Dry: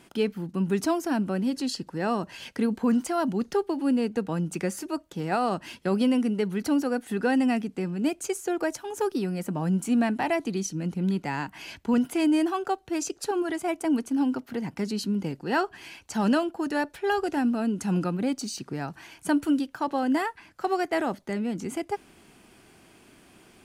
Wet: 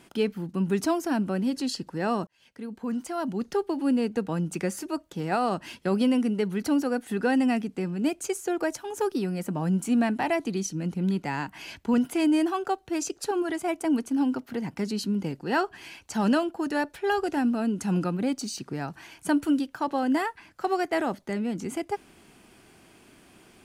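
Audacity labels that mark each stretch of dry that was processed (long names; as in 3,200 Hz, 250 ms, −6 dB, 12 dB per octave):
2.270000	3.770000	fade in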